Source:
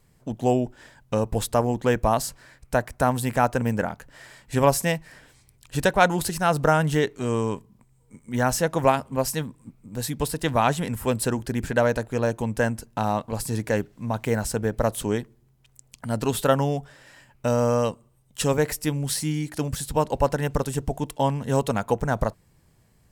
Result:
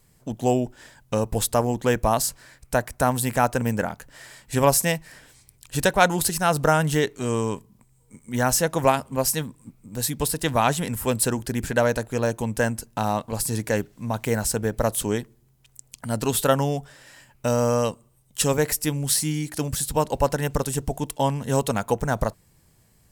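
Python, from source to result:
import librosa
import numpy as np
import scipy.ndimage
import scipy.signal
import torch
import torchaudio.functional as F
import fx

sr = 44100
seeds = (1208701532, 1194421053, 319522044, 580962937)

y = fx.high_shelf(x, sr, hz=4600.0, db=8.0)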